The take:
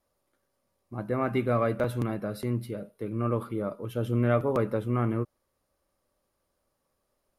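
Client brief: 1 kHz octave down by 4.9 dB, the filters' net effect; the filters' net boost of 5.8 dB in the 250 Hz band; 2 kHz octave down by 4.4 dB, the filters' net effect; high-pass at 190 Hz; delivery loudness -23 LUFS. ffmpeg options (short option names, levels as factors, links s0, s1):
-af "highpass=190,equalizer=f=250:t=o:g=8.5,equalizer=f=1000:t=o:g=-6,equalizer=f=2000:t=o:g=-3.5,volume=1.68"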